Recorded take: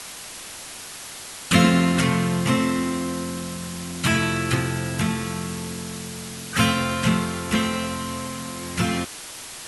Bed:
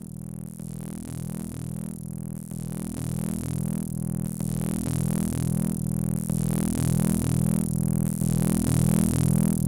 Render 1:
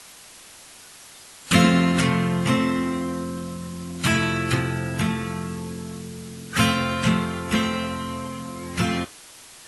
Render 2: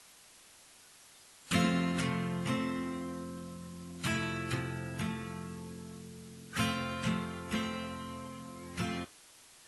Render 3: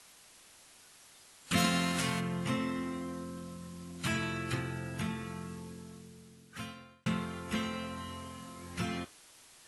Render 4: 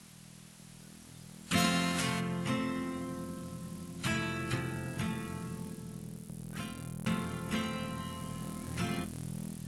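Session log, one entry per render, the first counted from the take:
noise print and reduce 8 dB
gain -12.5 dB
1.56–2.19 spectral whitening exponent 0.6; 5.52–7.06 fade out; 7.94–8.74 flutter echo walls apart 5.7 m, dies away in 0.41 s
add bed -18.5 dB

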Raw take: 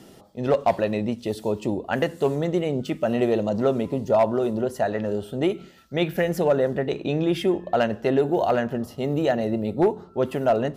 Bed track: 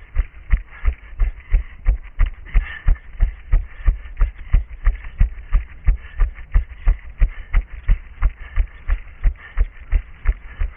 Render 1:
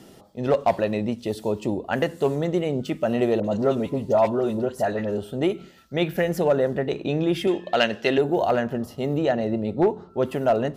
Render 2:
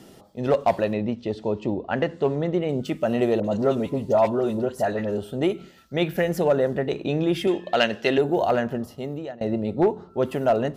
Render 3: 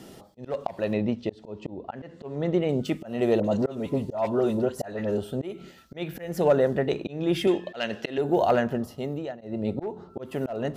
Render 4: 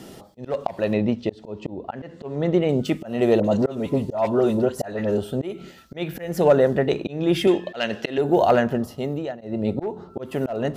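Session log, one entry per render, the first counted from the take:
3.4–5.18 dispersion highs, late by 45 ms, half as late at 1300 Hz; 7.47–8.18 weighting filter D; 9.17–10.1 air absorption 51 m
0.93–2.69 air absorption 150 m; 8.7–9.41 fade out, to -23 dB
auto swell 0.277 s; reverse; upward compressor, threshold -41 dBFS; reverse
gain +4.5 dB

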